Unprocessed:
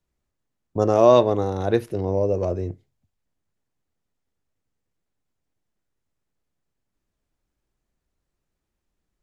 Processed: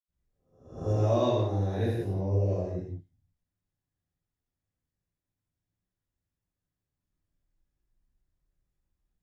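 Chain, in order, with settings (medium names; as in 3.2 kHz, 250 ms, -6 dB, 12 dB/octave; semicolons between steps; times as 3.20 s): reverse spectral sustain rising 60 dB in 0.58 s; bass shelf 100 Hz +10 dB; reverberation, pre-delay 78 ms; dynamic bell 1.2 kHz, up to -5 dB, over -45 dBFS, Q 1.7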